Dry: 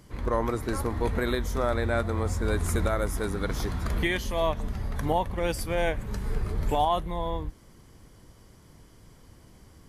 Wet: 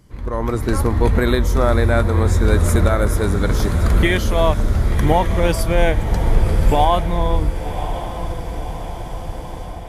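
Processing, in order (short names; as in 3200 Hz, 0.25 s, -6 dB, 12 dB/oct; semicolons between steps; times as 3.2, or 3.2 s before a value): low shelf 210 Hz +6 dB; AGC gain up to 15 dB; on a send: diffused feedback echo 1.075 s, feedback 61%, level -10.5 dB; on the sum: gain -2 dB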